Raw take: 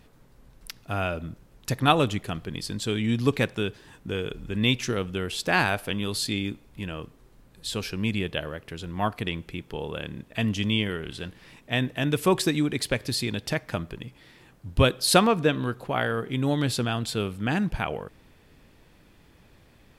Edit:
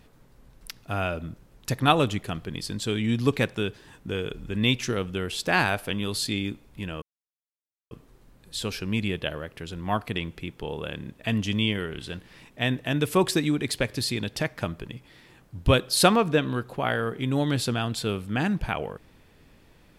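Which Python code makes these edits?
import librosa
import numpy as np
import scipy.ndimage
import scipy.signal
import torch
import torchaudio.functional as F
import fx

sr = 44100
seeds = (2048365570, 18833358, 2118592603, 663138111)

y = fx.edit(x, sr, fx.insert_silence(at_s=7.02, length_s=0.89), tone=tone)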